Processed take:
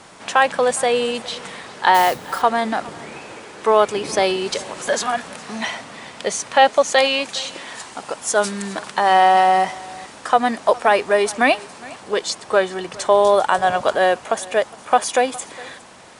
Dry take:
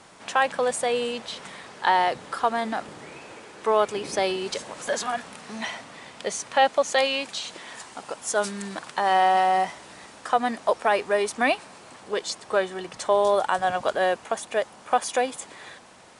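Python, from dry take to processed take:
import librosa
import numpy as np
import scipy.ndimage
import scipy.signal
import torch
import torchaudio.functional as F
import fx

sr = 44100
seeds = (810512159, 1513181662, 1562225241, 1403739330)

y = x + 10.0 ** (-21.5 / 20.0) * np.pad(x, (int(411 * sr / 1000.0), 0))[:len(x)]
y = fx.mod_noise(y, sr, seeds[0], snr_db=16, at=(1.94, 2.42))
y = F.gain(torch.from_numpy(y), 6.5).numpy()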